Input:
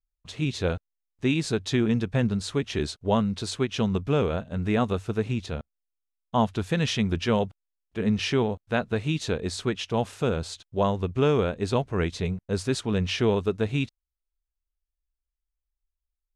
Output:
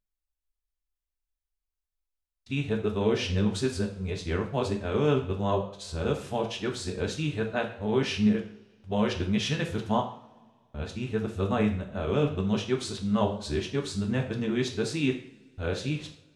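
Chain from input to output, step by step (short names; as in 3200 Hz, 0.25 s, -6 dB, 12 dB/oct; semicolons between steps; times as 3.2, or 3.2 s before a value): whole clip reversed; flange 0.87 Hz, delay 9.6 ms, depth 6.1 ms, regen +88%; two-slope reverb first 0.47 s, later 2.3 s, from -25 dB, DRR 2.5 dB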